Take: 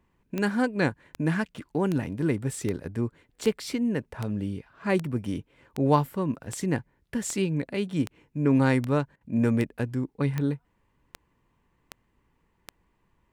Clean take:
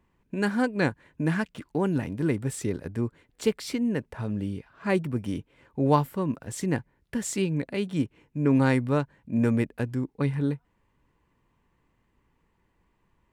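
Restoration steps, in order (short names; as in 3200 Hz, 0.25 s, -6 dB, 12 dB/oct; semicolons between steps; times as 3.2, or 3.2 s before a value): de-click; interpolate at 9.16, 48 ms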